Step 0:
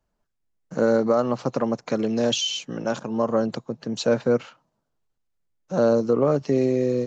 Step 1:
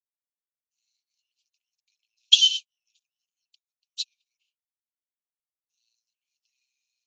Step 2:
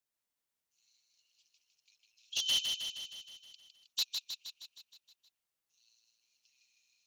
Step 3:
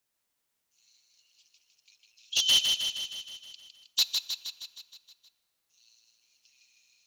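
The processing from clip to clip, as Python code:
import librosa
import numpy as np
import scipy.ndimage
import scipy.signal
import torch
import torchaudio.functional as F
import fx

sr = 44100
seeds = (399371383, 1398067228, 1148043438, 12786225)

y1 = scipy.signal.sosfilt(scipy.signal.butter(12, 2500.0, 'highpass', fs=sr, output='sos'), x)
y1 = fx.dynamic_eq(y1, sr, hz=3600.0, q=1.5, threshold_db=-45.0, ratio=4.0, max_db=8)
y1 = fx.upward_expand(y1, sr, threshold_db=-40.0, expansion=2.5)
y1 = F.gain(torch.from_numpy(y1), 5.5).numpy()
y2 = fx.over_compress(y1, sr, threshold_db=-30.0, ratio=-1.0)
y2 = np.clip(y2, -10.0 ** (-23.5 / 20.0), 10.0 ** (-23.5 / 20.0))
y2 = fx.echo_feedback(y2, sr, ms=157, feedback_pct=60, wet_db=-5.0)
y2 = F.gain(torch.from_numpy(y2), -3.0).numpy()
y3 = fx.rev_plate(y2, sr, seeds[0], rt60_s=2.0, hf_ratio=0.7, predelay_ms=0, drr_db=17.5)
y3 = F.gain(torch.from_numpy(y3), 8.0).numpy()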